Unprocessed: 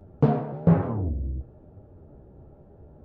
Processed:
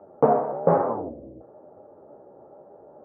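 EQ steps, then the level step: cabinet simulation 500–2100 Hz, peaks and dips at 560 Hz +5 dB, 840 Hz +5 dB, 1.2 kHz +5 dB; tilt shelf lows +9.5 dB, about 890 Hz; peaking EQ 1.2 kHz +6 dB 3 oct; 0.0 dB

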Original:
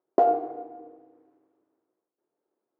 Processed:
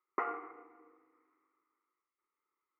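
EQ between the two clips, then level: dynamic bell 1.6 kHz, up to +4 dB, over -40 dBFS, Q 1.3; two resonant band-passes 1.6 kHz, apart 0.73 oct; static phaser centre 1.6 kHz, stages 4; +12.5 dB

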